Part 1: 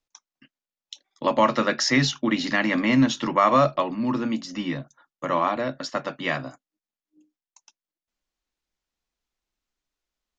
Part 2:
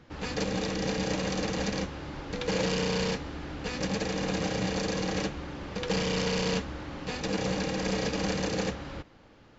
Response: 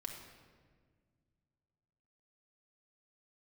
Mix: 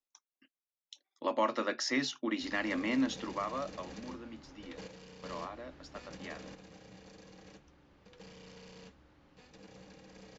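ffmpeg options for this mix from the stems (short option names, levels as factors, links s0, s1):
-filter_complex "[0:a]lowshelf=f=210:t=q:w=1.5:g=-11,volume=0.266,afade=t=out:st=3.09:d=0.4:silence=0.354813,asplit=2[s0][s1];[1:a]adelay=2300,volume=0.133[s2];[s1]apad=whole_len=524248[s3];[s2][s3]sidechaingate=range=0.447:threshold=0.001:ratio=16:detection=peak[s4];[s0][s4]amix=inputs=2:normalize=0"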